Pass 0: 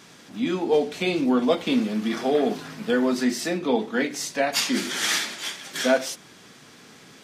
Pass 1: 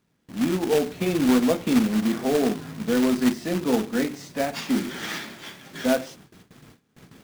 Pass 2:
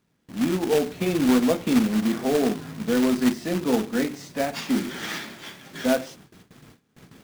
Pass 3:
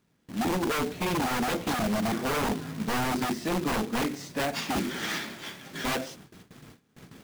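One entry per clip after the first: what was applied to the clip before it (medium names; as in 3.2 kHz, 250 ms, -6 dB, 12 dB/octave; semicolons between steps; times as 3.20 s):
RIAA curve playback; companded quantiser 4-bit; gate with hold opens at -37 dBFS; trim -4.5 dB
no audible change
wavefolder -23 dBFS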